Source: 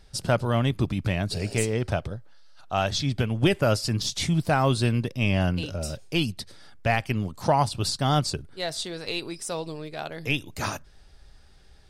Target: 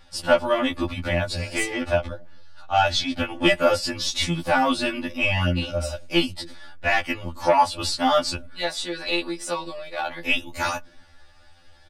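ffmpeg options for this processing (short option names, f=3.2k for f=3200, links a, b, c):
-filter_complex "[0:a]aecho=1:1:3.5:0.8,acrossover=split=120|550|3600[a][b][c][d];[b]aecho=1:1:263:0.106[e];[c]aeval=exprs='0.316*sin(PI/2*1.58*val(0)/0.316)':c=same[f];[a][e][f][d]amix=inputs=4:normalize=0,afftfilt=real='re*2*eq(mod(b,4),0)':imag='im*2*eq(mod(b,4),0)':win_size=2048:overlap=0.75"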